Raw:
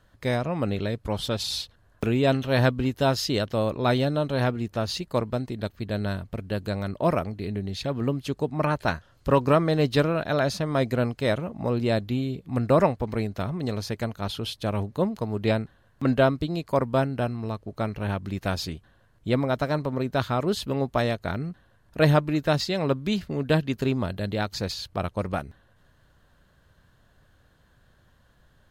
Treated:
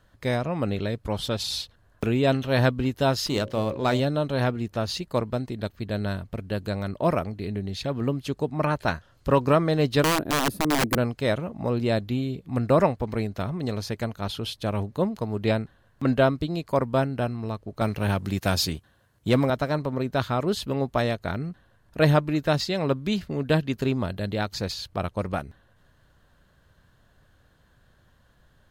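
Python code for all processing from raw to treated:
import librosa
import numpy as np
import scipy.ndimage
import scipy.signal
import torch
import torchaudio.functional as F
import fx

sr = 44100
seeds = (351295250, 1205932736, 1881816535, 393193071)

y = fx.chain(x, sr, fx.hum_notches(base_hz=60, count=10),
    fx.running_max(window=3), at=(3.26, 4.0))
y = fx.chain(y, sr, fx.curve_eq(hz=(180.0, 320.0, 700.0, 1200.0, 6200.0, 11000.0), db=(0, 11, -8, -10, -19, 7)),
    fx.overflow_wrap(gain_db=16.5), at=(10.03, 10.98))
y = fx.chain(y, sr, fx.highpass(hz=53.0, slope=24),
    fx.high_shelf(hz=5100.0, db=9.0),
    fx.leveller(passes=1), at=(17.81, 19.5))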